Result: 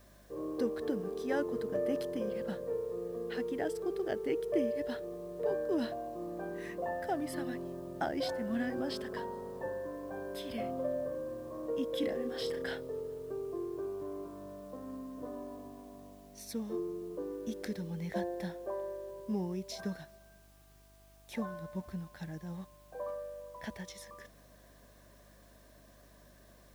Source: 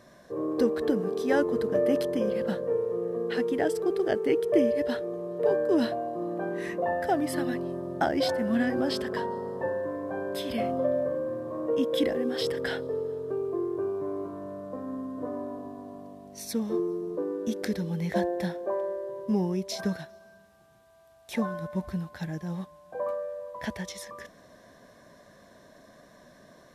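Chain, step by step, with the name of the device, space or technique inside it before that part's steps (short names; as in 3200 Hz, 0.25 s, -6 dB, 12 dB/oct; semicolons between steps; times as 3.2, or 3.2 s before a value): 12–12.75 doubler 34 ms -6 dB; video cassette with head-switching buzz (buzz 50 Hz, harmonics 8, -54 dBFS -7 dB/oct; white noise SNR 30 dB); gain -8.5 dB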